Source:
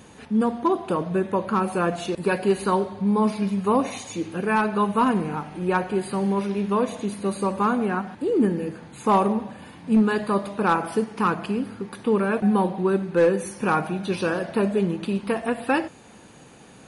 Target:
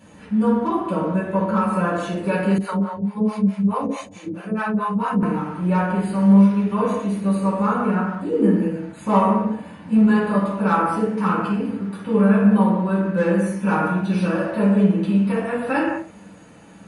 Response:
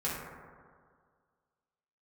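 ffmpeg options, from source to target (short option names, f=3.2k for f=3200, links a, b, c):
-filter_complex "[1:a]atrim=start_sample=2205,afade=t=out:st=0.33:d=0.01,atrim=end_sample=14994,asetrate=52920,aresample=44100[a];[0:a][a]afir=irnorm=-1:irlink=0,asettb=1/sr,asplit=3[b][c][d];[b]atrim=end=2.584[e];[c]atrim=start=2.58:end=5.23,asetpts=PTS-STARTPTS,afade=t=in:d=0.004:c=qsin,afade=t=out:st=2.646:d=0.004:c=qsin,acrossover=split=540[f][g];[f]aeval=exprs='val(0)*(1-1/2+1/2*cos(2*PI*4.6*n/s))':c=same[h];[g]aeval=exprs='val(0)*(1-1/2-1/2*cos(2*PI*4.6*n/s))':c=same[i];[h][i]amix=inputs=2:normalize=0[j];[d]atrim=start=5.226[k];[e][j]acrossfade=d=0.004:c1=hsin:c2=qsin[l];[l][k]acrossfade=d=0.004:c1=qsin:c2=hsin,volume=-3.5dB"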